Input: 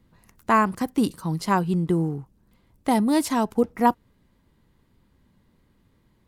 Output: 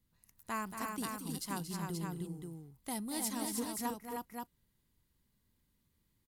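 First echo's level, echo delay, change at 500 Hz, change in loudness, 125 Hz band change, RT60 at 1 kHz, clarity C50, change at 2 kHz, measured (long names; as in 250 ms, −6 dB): −8.5 dB, 230 ms, −19.0 dB, −16.5 dB, −15.5 dB, no reverb audible, no reverb audible, −14.5 dB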